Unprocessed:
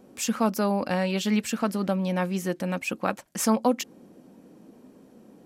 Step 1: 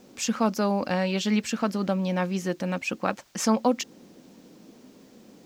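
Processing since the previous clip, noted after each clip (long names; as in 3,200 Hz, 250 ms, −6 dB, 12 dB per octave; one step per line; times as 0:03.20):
bit-depth reduction 10 bits, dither triangular
high shelf with overshoot 7,800 Hz −7.5 dB, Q 1.5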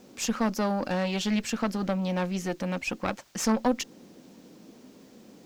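one-sided soft clipper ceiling −24 dBFS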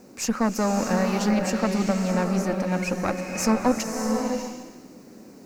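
parametric band 3,300 Hz −14 dB 0.41 octaves
slow-attack reverb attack 610 ms, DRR 2.5 dB
level +3.5 dB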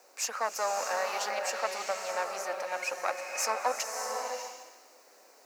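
high-pass filter 590 Hz 24 dB per octave
level −2.5 dB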